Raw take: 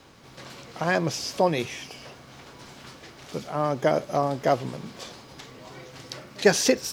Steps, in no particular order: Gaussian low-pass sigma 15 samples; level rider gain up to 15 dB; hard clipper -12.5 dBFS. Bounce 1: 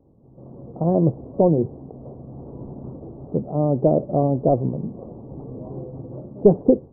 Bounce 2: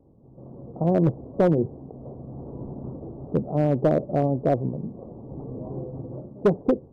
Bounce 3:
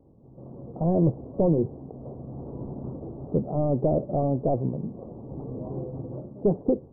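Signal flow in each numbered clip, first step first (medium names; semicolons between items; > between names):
hard clipper > level rider > Gaussian low-pass; level rider > Gaussian low-pass > hard clipper; level rider > hard clipper > Gaussian low-pass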